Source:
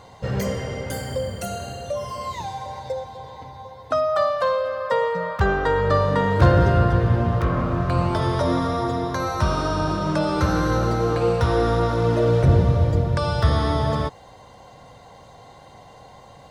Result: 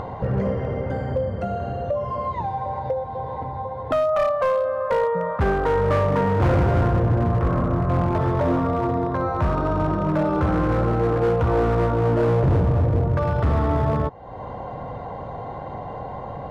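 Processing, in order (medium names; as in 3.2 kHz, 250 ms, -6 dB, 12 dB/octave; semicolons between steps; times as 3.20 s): low-pass 1.2 kHz 12 dB/octave; upward compressor, threshold -22 dBFS; hard clipper -17.5 dBFS, distortion -11 dB; trim +2 dB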